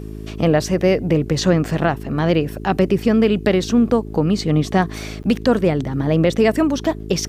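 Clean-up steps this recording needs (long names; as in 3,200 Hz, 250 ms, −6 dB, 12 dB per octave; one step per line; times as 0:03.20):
hum removal 53.1 Hz, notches 8
repair the gap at 0:05.23, 9.3 ms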